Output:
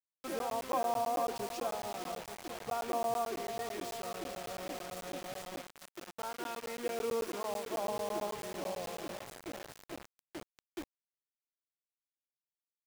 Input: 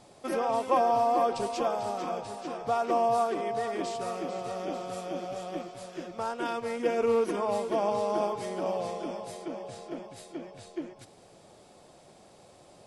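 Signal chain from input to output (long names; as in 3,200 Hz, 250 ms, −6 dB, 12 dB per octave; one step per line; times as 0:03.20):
bit-depth reduction 6 bits, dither none
0:05.60–0:07.85: low-shelf EQ 170 Hz −8 dB
regular buffer underruns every 0.11 s, samples 512, zero, from 0:00.39
level −8 dB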